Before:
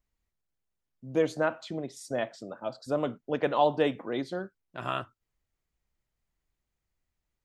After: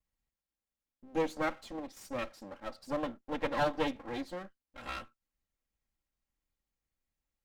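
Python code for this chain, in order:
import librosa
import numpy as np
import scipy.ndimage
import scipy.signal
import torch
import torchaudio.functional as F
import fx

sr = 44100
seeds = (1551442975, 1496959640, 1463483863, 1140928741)

y = fx.lower_of_two(x, sr, delay_ms=3.7)
y = y * librosa.db_to_amplitude(-4.5)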